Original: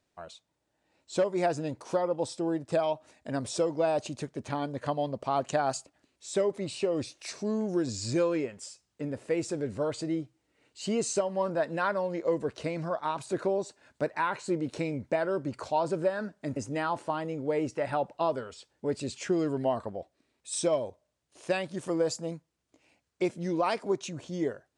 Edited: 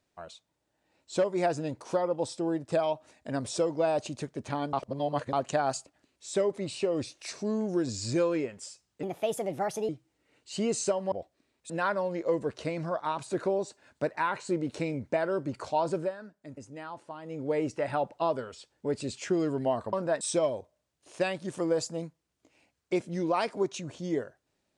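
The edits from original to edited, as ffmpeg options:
-filter_complex "[0:a]asplit=11[s0][s1][s2][s3][s4][s5][s6][s7][s8][s9][s10];[s0]atrim=end=4.732[s11];[s1]atrim=start=4.728:end=5.332,asetpts=PTS-STARTPTS,areverse[s12];[s2]atrim=start=5.328:end=9.034[s13];[s3]atrim=start=9.03:end=10.18,asetpts=PTS-STARTPTS,asetrate=59094,aresample=44100,atrim=end_sample=37847,asetpts=PTS-STARTPTS[s14];[s4]atrim=start=10.176:end=11.412[s15];[s5]atrim=start=19.918:end=20.502[s16];[s6]atrim=start=11.688:end=16.16,asetpts=PTS-STARTPTS,afade=t=out:st=4.262:d=0.21:silence=0.281838[s17];[s7]atrim=start=16.16:end=17.21,asetpts=PTS-STARTPTS,volume=0.282[s18];[s8]atrim=start=17.21:end=19.922,asetpts=PTS-STARTPTS,afade=t=in:d=0.21:silence=0.281838[s19];[s9]atrim=start=11.408:end=11.692[s20];[s10]atrim=start=20.498[s21];[s11][s12]acrossfade=d=0.004:c1=hsin:c2=hsin[s22];[s22][s13]acrossfade=d=0.004:c1=hsin:c2=hsin[s23];[s23][s14]acrossfade=d=0.004:c1=hsin:c2=hsin[s24];[s24][s15]acrossfade=d=0.004:c1=hsin:c2=hsin[s25];[s25][s16]acrossfade=d=0.004:c1=hsin:c2=hsin[s26];[s17][s18][s19]concat=n=3:v=0:a=1[s27];[s26][s27]acrossfade=d=0.004:c1=hsin:c2=hsin[s28];[s28][s20]acrossfade=d=0.004:c1=hsin:c2=hsin[s29];[s29][s21]acrossfade=d=0.004:c1=hsin:c2=hsin"

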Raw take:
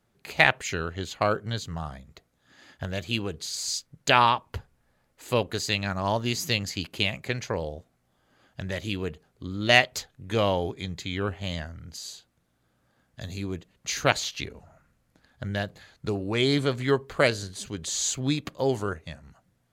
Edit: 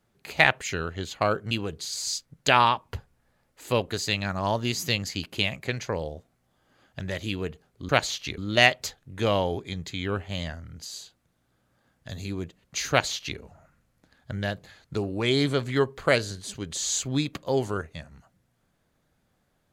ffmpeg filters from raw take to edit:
-filter_complex "[0:a]asplit=4[s0][s1][s2][s3];[s0]atrim=end=1.512[s4];[s1]atrim=start=3.118:end=9.502[s5];[s2]atrim=start=14.018:end=14.512[s6];[s3]atrim=start=9.498[s7];[s4][s5]acrossfade=d=0.004:c1=hsin:c2=hsin[s8];[s8][s6]acrossfade=d=0.004:c1=hsin:c2=hsin[s9];[s9][s7]acrossfade=d=0.004:c1=hsin:c2=hsin"

